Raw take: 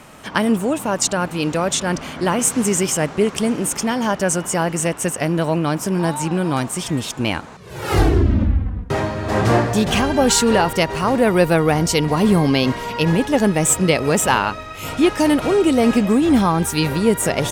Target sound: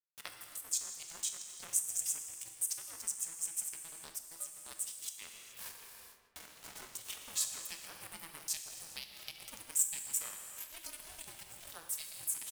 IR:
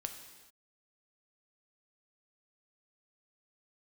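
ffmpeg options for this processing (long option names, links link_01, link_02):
-filter_complex "[0:a]flanger=delay=4.7:depth=5.9:regen=90:speed=0.53:shape=sinusoidal,acompressor=threshold=-26dB:ratio=1.5,atempo=1.4,aderivative,aeval=exprs='sgn(val(0))*max(abs(val(0))-0.00631,0)':channel_layout=same,highshelf=frequency=8800:gain=6.5,asplit=2[link_01][link_02];[link_02]adelay=155,lowpass=frequency=2000:poles=1,volume=-12.5dB,asplit=2[link_03][link_04];[link_04]adelay=155,lowpass=frequency=2000:poles=1,volume=0.3,asplit=2[link_05][link_06];[link_06]adelay=155,lowpass=frequency=2000:poles=1,volume=0.3[link_07];[link_01][link_03][link_05][link_07]amix=inputs=4:normalize=0[link_08];[1:a]atrim=start_sample=2205[link_09];[link_08][link_09]afir=irnorm=-1:irlink=0,acompressor=mode=upward:threshold=-33dB:ratio=2.5,aeval=exprs='val(0)*sin(2*PI*330*n/s)':channel_layout=same,volume=-3dB"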